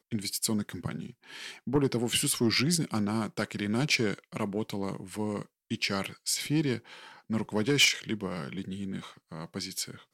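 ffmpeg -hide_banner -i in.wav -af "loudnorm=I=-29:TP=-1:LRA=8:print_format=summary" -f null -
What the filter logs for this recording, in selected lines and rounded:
Input Integrated:    -29.9 LUFS
Input True Peak:     -12.0 dBTP
Input LRA:             2.6 LU
Input Threshold:     -40.4 LUFS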